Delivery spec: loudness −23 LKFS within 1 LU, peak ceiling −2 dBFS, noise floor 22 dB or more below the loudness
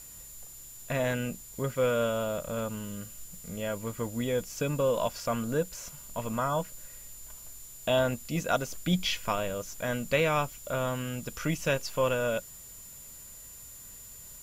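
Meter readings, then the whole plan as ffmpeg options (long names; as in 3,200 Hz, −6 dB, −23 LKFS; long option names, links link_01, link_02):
interfering tone 7,100 Hz; level of the tone −48 dBFS; background noise floor −48 dBFS; target noise floor −53 dBFS; integrated loudness −31.0 LKFS; sample peak −13.5 dBFS; target loudness −23.0 LKFS
→ -af "bandreject=frequency=7100:width=30"
-af "afftdn=noise_reduction=6:noise_floor=-48"
-af "volume=8dB"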